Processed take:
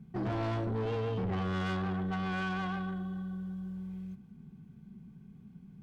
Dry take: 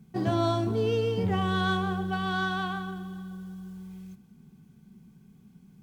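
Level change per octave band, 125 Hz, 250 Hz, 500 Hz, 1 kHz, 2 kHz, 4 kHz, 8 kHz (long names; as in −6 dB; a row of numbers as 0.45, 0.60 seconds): −3.5 dB, −4.0 dB, −7.5 dB, −7.5 dB, −7.0 dB, −10.5 dB, can't be measured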